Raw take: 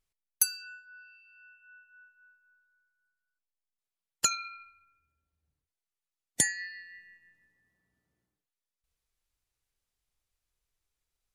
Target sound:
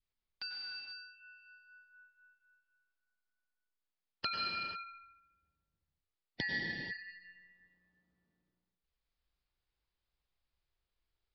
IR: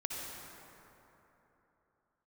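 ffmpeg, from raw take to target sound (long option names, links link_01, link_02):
-filter_complex "[0:a]aresample=11025,aresample=44100[link_01];[1:a]atrim=start_sample=2205,afade=type=out:start_time=0.36:duration=0.01,atrim=end_sample=16317,asetrate=27342,aresample=44100[link_02];[link_01][link_02]afir=irnorm=-1:irlink=0,adynamicequalizer=threshold=0.00251:dfrequency=760:dqfactor=0.92:tfrequency=760:tqfactor=0.92:attack=5:release=100:ratio=0.375:range=2.5:mode=cutabove:tftype=bell,volume=-5dB"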